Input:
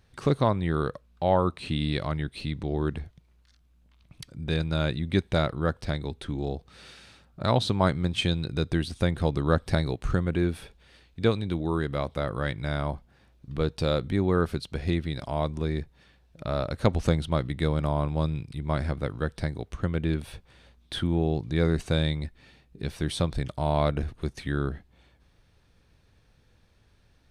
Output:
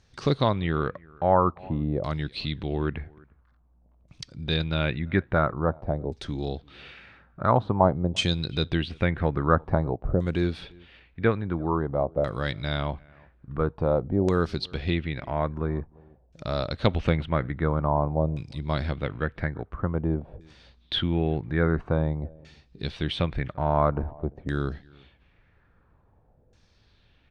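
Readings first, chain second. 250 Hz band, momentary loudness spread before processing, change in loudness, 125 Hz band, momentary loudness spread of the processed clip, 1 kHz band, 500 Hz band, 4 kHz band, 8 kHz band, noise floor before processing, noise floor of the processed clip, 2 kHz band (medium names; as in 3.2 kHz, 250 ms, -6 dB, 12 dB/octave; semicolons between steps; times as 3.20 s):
+0.5 dB, 9 LU, +1.0 dB, 0.0 dB, 11 LU, +4.0 dB, +1.5 dB, +1.5 dB, no reading, -62 dBFS, -62 dBFS, +2.0 dB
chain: echo from a far wall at 59 m, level -26 dB; LFO low-pass saw down 0.49 Hz 560–6700 Hz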